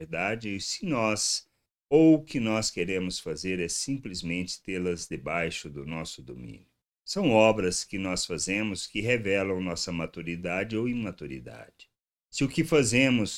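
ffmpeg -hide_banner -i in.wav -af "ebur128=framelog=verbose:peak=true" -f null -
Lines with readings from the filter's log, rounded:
Integrated loudness:
  I:         -27.6 LUFS
  Threshold: -38.2 LUFS
Loudness range:
  LRA:         6.2 LU
  Threshold: -48.7 LUFS
  LRA low:   -32.7 LUFS
  LRA high:  -26.4 LUFS
True peak:
  Peak:       -6.9 dBFS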